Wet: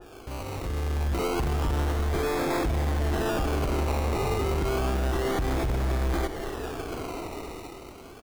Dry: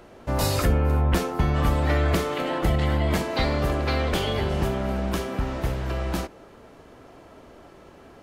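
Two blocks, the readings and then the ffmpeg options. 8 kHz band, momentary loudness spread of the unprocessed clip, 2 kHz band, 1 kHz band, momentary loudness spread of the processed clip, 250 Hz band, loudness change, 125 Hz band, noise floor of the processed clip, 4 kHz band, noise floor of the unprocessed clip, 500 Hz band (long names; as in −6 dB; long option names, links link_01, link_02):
−2.5 dB, 7 LU, −3.5 dB, −2.0 dB, 10 LU, −3.5 dB, −3.5 dB, −4.0 dB, −45 dBFS, −5.5 dB, −49 dBFS, −2.0 dB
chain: -filter_complex "[0:a]aecho=1:1:2.6:0.59,acompressor=threshold=-34dB:ratio=2,alimiter=level_in=4dB:limit=-24dB:level=0:latency=1,volume=-4dB,dynaudnorm=framelen=110:gausssize=17:maxgain=13.5dB,acrusher=samples=21:mix=1:aa=0.000001:lfo=1:lforange=12.6:lforate=0.3,asoftclip=type=tanh:threshold=-22.5dB,asplit=7[link_01][link_02][link_03][link_04][link_05][link_06][link_07];[link_02]adelay=261,afreqshift=-45,volume=-14dB[link_08];[link_03]adelay=522,afreqshift=-90,volume=-18.6dB[link_09];[link_04]adelay=783,afreqshift=-135,volume=-23.2dB[link_10];[link_05]adelay=1044,afreqshift=-180,volume=-27.7dB[link_11];[link_06]adelay=1305,afreqshift=-225,volume=-32.3dB[link_12];[link_07]adelay=1566,afreqshift=-270,volume=-36.9dB[link_13];[link_01][link_08][link_09][link_10][link_11][link_12][link_13]amix=inputs=7:normalize=0,adynamicequalizer=threshold=0.00891:dfrequency=2300:dqfactor=0.7:tfrequency=2300:tqfactor=0.7:attack=5:release=100:ratio=0.375:range=2:mode=cutabove:tftype=highshelf"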